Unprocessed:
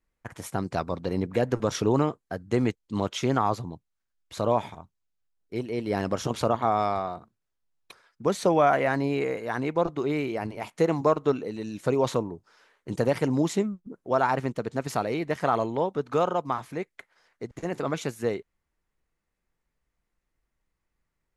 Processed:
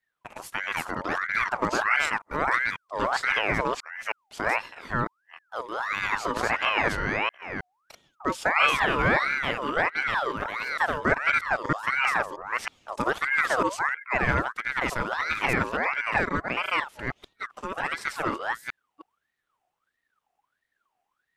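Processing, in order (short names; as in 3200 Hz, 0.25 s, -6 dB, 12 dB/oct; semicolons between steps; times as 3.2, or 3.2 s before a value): reverse delay 0.317 s, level 0 dB; ring modulator with a swept carrier 1300 Hz, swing 45%, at 1.5 Hz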